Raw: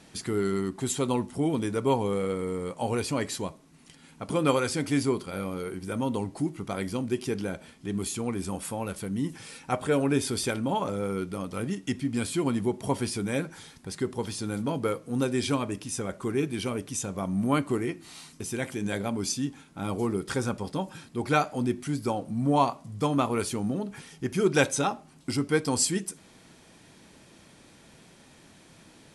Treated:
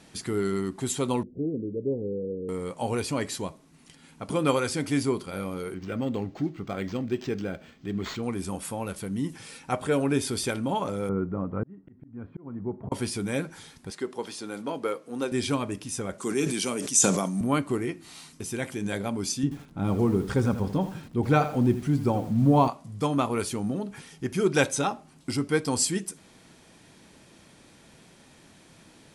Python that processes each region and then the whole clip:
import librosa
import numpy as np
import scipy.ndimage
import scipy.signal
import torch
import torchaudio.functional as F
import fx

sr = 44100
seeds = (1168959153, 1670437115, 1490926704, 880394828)

y = fx.chain(x, sr, fx.steep_lowpass(hz=510.0, slope=48),
    fx.low_shelf(hz=290.0, db=-5.5), at=(1.23, 2.49))
y = fx.chain(y, sr, fx.lowpass(hz=10000.0, slope=24),
    fx.notch(hz=950.0, q=5.2),
    fx.resample_linear(factor=4), at=(5.74, 8.23))
y = fx.chain(y, sr, fx.lowpass(hz=1500.0, slope=24),
    fx.low_shelf(hz=290.0, db=6.5),
    fx.auto_swell(attack_ms=783.0), at=(11.09, 12.92))
y = fx.chain(y, sr, fx.highpass(hz=310.0, slope=12),
    fx.high_shelf(hz=7400.0, db=-7.0), at=(13.9, 15.32))
y = fx.chain(y, sr, fx.highpass(hz=160.0, slope=24),
    fx.peak_eq(hz=7100.0, db=13.5, octaves=1.4),
    fx.sustainer(db_per_s=38.0), at=(16.18, 17.41))
y = fx.chain(y, sr, fx.tilt_eq(slope=-2.5),
    fx.echo_crushed(ms=82, feedback_pct=35, bits=7, wet_db=-11.0), at=(19.43, 22.68))